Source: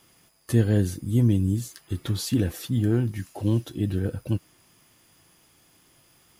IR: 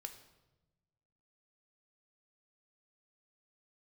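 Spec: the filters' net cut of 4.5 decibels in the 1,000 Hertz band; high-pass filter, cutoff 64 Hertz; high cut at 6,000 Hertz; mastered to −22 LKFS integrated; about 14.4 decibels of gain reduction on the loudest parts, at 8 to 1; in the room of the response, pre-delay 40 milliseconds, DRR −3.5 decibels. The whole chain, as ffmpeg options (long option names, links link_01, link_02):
-filter_complex "[0:a]highpass=64,lowpass=6000,equalizer=frequency=1000:width_type=o:gain=-6.5,acompressor=threshold=-31dB:ratio=8,asplit=2[link_01][link_02];[1:a]atrim=start_sample=2205,adelay=40[link_03];[link_02][link_03]afir=irnorm=-1:irlink=0,volume=7.5dB[link_04];[link_01][link_04]amix=inputs=2:normalize=0,volume=10dB"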